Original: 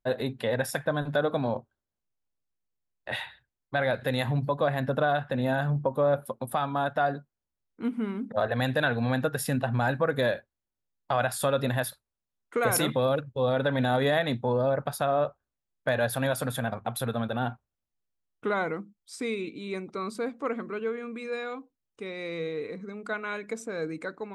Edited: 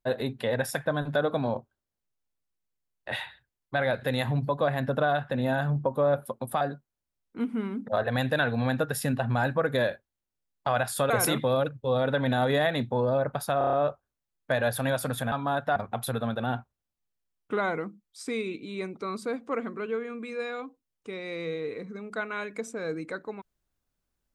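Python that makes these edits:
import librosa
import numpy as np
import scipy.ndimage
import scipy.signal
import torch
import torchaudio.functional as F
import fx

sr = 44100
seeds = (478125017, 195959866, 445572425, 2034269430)

y = fx.edit(x, sr, fx.move(start_s=6.61, length_s=0.44, to_s=16.69),
    fx.cut(start_s=11.54, length_s=1.08),
    fx.stutter(start_s=15.1, slice_s=0.03, count=6), tone=tone)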